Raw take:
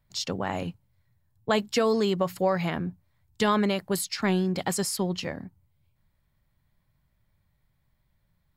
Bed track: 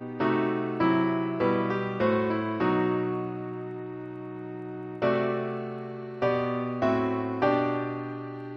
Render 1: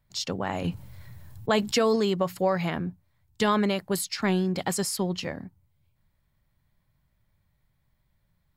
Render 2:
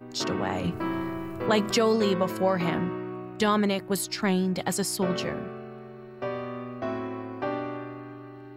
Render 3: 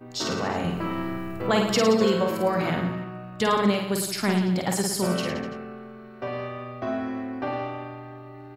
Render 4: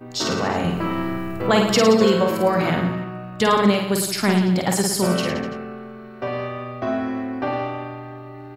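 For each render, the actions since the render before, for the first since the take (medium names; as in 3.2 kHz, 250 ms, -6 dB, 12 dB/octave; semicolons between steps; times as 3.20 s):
0.64–1.96 s: level flattener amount 50%
add bed track -6.5 dB
reverse bouncing-ball echo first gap 50 ms, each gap 1.15×, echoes 5
trim +5 dB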